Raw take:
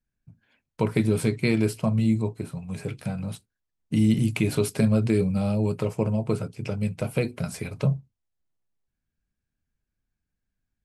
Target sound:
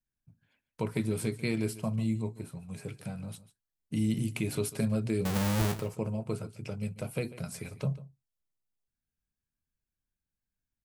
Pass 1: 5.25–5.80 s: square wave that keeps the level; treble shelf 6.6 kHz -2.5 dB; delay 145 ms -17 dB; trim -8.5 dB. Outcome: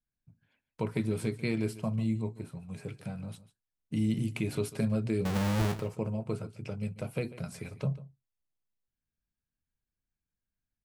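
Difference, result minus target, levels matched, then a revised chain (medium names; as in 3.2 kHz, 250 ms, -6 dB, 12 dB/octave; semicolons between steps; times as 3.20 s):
8 kHz band -6.0 dB
5.25–5.80 s: square wave that keeps the level; treble shelf 6.6 kHz +7 dB; delay 145 ms -17 dB; trim -8.5 dB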